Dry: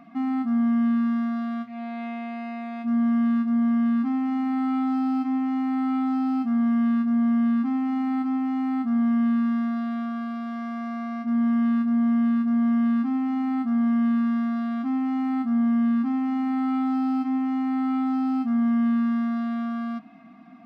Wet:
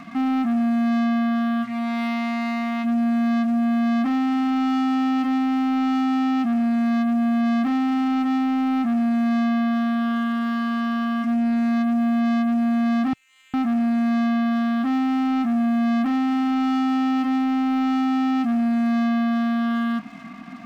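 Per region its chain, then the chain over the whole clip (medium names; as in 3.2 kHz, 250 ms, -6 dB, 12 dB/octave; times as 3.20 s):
13.13–13.54 s: elliptic high-pass 2.5 kHz, stop band 70 dB + distance through air 290 m
whole clip: graphic EQ 125/500/1000/2000 Hz +4/-12/+3/+4 dB; waveshaping leveller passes 3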